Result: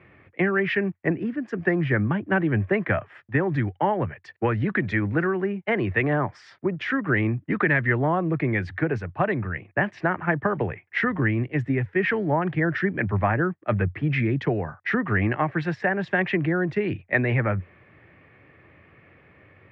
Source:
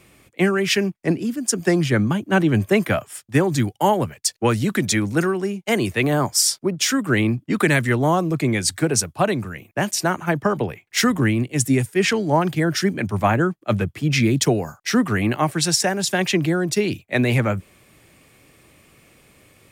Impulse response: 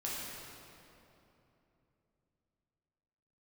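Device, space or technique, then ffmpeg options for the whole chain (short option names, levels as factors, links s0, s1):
bass amplifier: -af "acompressor=threshold=0.1:ratio=3,highpass=74,equalizer=f=91:t=q:w=4:g=7,equalizer=f=240:t=q:w=4:g=-4,equalizer=f=1800:t=q:w=4:g=7,lowpass=f=2300:w=0.5412,lowpass=f=2300:w=1.3066"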